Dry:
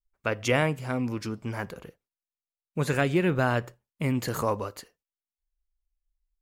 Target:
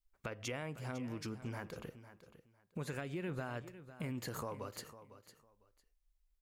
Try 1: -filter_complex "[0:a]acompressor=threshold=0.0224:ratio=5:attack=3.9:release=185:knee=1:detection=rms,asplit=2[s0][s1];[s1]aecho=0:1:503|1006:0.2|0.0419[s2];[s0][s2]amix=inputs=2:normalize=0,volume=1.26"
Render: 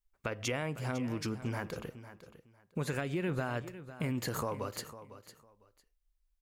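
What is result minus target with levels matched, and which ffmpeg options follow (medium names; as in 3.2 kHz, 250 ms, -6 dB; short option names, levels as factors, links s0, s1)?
compression: peak gain reduction -7 dB
-filter_complex "[0:a]acompressor=threshold=0.00841:ratio=5:attack=3.9:release=185:knee=1:detection=rms,asplit=2[s0][s1];[s1]aecho=0:1:503|1006:0.2|0.0419[s2];[s0][s2]amix=inputs=2:normalize=0,volume=1.26"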